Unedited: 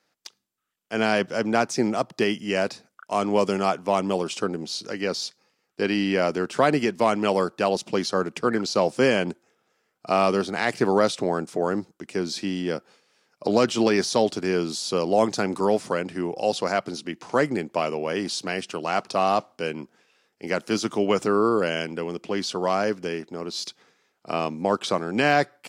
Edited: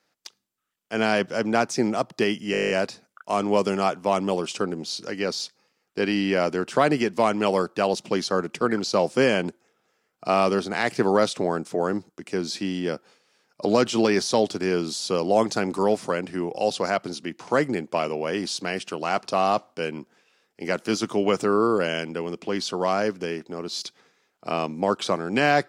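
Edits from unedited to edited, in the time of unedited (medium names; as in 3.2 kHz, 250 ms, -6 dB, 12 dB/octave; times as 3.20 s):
2.52 s: stutter 0.02 s, 10 plays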